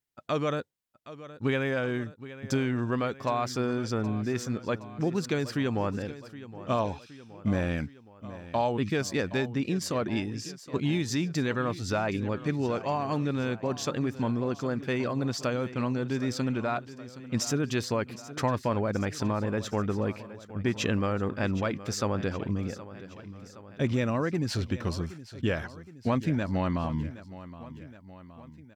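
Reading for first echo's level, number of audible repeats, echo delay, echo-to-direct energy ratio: -15.5 dB, 3, 769 ms, -14.0 dB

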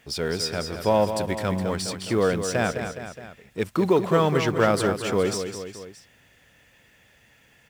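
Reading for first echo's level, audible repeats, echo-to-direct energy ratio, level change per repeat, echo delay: -8.5 dB, 3, -7.0 dB, -5.0 dB, 208 ms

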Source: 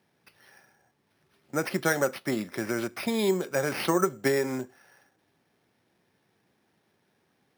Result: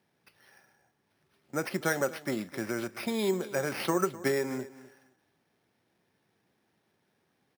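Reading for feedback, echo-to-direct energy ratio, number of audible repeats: 18%, -17.5 dB, 2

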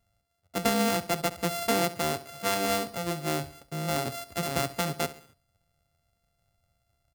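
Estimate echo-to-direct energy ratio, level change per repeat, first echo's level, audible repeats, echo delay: -15.0 dB, -7.0 dB, -16.0 dB, 3, 68 ms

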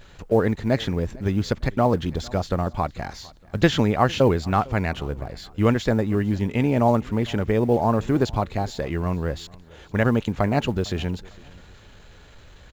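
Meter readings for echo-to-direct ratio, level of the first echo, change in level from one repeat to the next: -23.0 dB, -23.5 dB, -9.0 dB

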